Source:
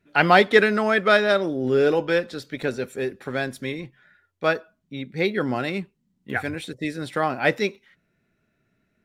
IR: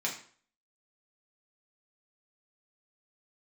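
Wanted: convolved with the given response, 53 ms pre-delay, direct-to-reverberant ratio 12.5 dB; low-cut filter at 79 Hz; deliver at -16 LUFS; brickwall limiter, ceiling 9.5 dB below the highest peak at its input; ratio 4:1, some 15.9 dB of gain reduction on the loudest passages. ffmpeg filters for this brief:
-filter_complex "[0:a]highpass=79,acompressor=threshold=-29dB:ratio=4,alimiter=limit=-22dB:level=0:latency=1,asplit=2[a][b];[1:a]atrim=start_sample=2205,adelay=53[c];[b][c]afir=irnorm=-1:irlink=0,volume=-18dB[d];[a][d]amix=inputs=2:normalize=0,volume=18dB"

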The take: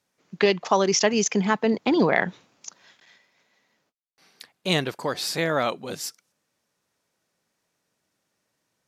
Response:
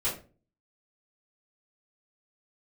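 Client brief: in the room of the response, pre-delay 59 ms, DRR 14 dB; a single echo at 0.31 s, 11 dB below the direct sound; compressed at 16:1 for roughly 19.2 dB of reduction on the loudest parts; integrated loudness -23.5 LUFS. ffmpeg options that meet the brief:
-filter_complex "[0:a]acompressor=threshold=-34dB:ratio=16,aecho=1:1:310:0.282,asplit=2[a][b];[1:a]atrim=start_sample=2205,adelay=59[c];[b][c]afir=irnorm=-1:irlink=0,volume=-21dB[d];[a][d]amix=inputs=2:normalize=0,volume=16dB"

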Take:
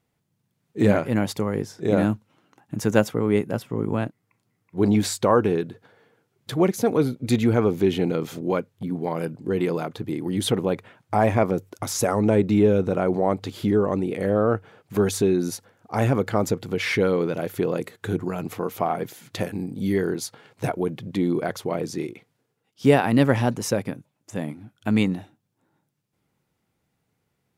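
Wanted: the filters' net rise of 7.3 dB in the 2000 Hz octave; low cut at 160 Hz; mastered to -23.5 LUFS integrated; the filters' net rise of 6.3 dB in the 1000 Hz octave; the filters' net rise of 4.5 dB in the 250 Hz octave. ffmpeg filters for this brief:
-af "highpass=160,equalizer=f=250:t=o:g=6.5,equalizer=f=1k:t=o:g=6.5,equalizer=f=2k:t=o:g=7,volume=-3.5dB"

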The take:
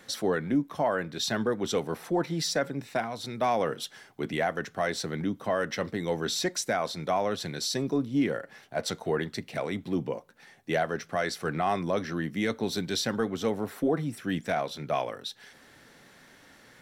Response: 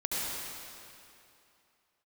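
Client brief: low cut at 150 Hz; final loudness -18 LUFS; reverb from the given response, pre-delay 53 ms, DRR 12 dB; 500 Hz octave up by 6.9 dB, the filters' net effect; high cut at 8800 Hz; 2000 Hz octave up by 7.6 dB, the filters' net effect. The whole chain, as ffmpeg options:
-filter_complex "[0:a]highpass=150,lowpass=8.8k,equalizer=f=500:t=o:g=8,equalizer=f=2k:t=o:g=9,asplit=2[a][b];[1:a]atrim=start_sample=2205,adelay=53[c];[b][c]afir=irnorm=-1:irlink=0,volume=-19.5dB[d];[a][d]amix=inputs=2:normalize=0,volume=7dB"

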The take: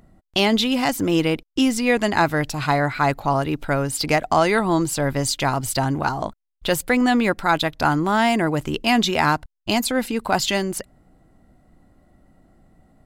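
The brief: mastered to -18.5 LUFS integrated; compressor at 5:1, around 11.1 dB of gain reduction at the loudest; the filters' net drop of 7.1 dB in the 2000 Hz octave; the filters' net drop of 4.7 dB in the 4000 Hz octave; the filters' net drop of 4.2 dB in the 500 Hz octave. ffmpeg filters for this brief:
-af "equalizer=f=500:t=o:g=-5,equalizer=f=2k:t=o:g=-8.5,equalizer=f=4k:t=o:g=-3,acompressor=threshold=-29dB:ratio=5,volume=14dB"

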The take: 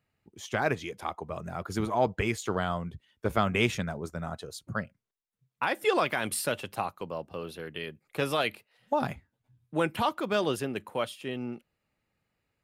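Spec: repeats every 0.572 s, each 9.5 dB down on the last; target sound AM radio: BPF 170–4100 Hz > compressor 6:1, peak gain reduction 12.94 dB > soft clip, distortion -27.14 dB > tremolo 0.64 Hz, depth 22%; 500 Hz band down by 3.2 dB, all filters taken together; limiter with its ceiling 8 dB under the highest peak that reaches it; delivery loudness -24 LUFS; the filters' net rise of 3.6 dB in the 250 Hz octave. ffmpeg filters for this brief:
-af "equalizer=f=250:t=o:g=8,equalizer=f=500:t=o:g=-6.5,alimiter=limit=-17.5dB:level=0:latency=1,highpass=170,lowpass=4.1k,aecho=1:1:572|1144|1716|2288:0.335|0.111|0.0365|0.012,acompressor=threshold=-37dB:ratio=6,asoftclip=threshold=-25.5dB,tremolo=f=0.64:d=0.22,volume=19.5dB"

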